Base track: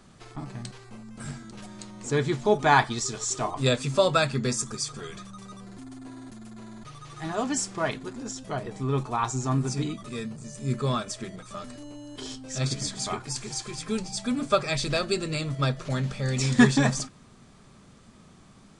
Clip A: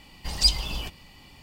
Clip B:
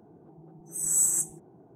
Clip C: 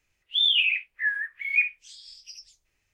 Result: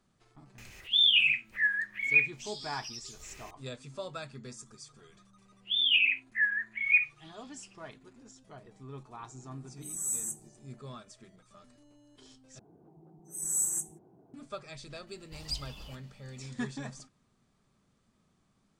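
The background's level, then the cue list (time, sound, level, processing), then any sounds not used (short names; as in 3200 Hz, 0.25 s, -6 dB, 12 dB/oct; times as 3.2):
base track -18.5 dB
0.58 add C -1.5 dB + upward compressor 4:1, threshold -36 dBFS
5.36 add C -1.5 dB + steep low-pass 3300 Hz
9.1 add B -9.5 dB
12.59 replace with B -6 dB
15.07 add A -16 dB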